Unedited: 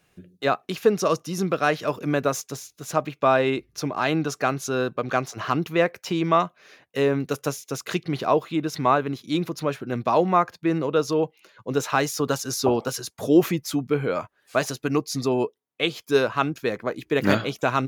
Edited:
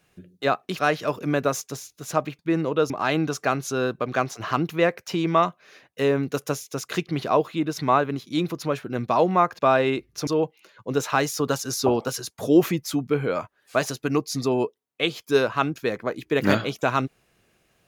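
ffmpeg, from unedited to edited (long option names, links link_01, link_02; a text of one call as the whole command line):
ffmpeg -i in.wav -filter_complex "[0:a]asplit=6[link_01][link_02][link_03][link_04][link_05][link_06];[link_01]atrim=end=0.792[link_07];[link_02]atrim=start=1.588:end=3.192[link_08];[link_03]atrim=start=10.558:end=11.072[link_09];[link_04]atrim=start=3.868:end=10.562[link_10];[link_05]atrim=start=3.188:end=3.872[link_11];[link_06]atrim=start=11.068[link_12];[link_07][link_08]acrossfade=duration=0.004:curve1=hsin:curve2=hsin[link_13];[link_13][link_09]acrossfade=duration=0.004:curve1=hsin:curve2=hsin[link_14];[link_14][link_10]acrossfade=duration=0.004:curve1=hsin:curve2=hsin[link_15];[link_15][link_11]acrossfade=duration=0.004:curve1=hsin:curve2=hsin[link_16];[link_16][link_12]acrossfade=duration=0.004:curve1=hsin:curve2=hsin" out.wav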